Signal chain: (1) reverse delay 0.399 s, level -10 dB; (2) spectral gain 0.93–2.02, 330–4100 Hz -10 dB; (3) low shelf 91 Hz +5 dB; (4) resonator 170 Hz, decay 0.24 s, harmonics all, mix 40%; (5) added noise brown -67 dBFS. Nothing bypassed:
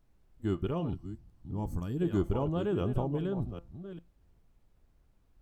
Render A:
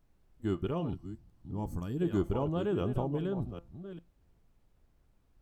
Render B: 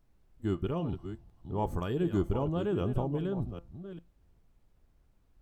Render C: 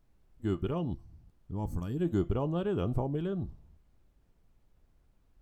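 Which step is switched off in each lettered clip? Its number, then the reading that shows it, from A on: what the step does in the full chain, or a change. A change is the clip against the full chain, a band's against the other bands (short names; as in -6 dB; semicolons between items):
3, 125 Hz band -1.5 dB; 2, 1 kHz band +2.0 dB; 1, momentary loudness spread change -7 LU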